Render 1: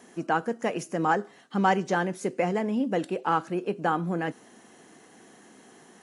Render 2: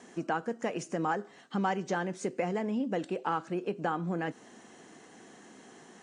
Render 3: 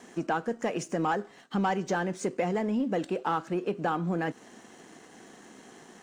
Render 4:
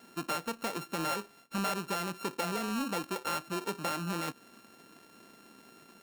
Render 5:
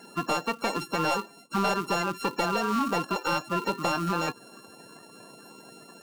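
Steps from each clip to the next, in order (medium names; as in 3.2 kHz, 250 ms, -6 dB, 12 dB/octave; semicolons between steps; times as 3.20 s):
compression 2:1, threshold -32 dBFS, peak gain reduction 8.5 dB; steep low-pass 9.2 kHz 72 dB/octave
waveshaping leveller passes 1
sorted samples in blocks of 32 samples; trim -5.5 dB
coarse spectral quantiser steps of 30 dB; slew-rate limiter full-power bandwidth 80 Hz; trim +8 dB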